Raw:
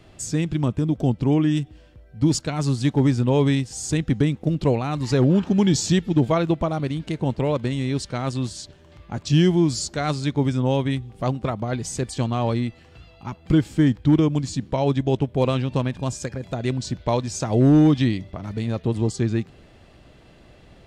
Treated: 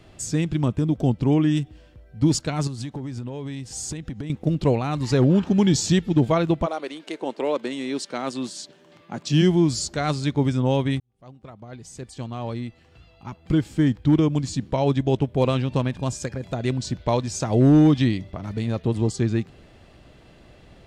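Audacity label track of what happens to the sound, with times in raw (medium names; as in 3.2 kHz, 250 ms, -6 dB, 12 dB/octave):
2.670000	4.300000	compression 16:1, threshold -27 dBFS
6.650000	9.410000	high-pass 390 Hz -> 140 Hz 24 dB/octave
11.000000	14.520000	fade in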